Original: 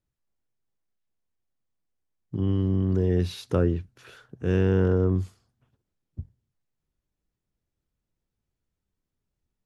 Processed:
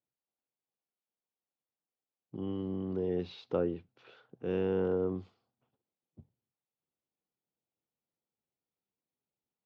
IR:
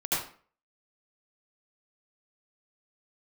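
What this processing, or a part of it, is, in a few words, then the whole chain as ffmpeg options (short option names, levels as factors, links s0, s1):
kitchen radio: -af "highpass=200,equalizer=f=500:t=q:w=4:g=4,equalizer=f=790:t=q:w=4:g=6,equalizer=f=1700:t=q:w=4:g=-7,lowpass=f=4100:w=0.5412,lowpass=f=4100:w=1.3066,volume=0.422"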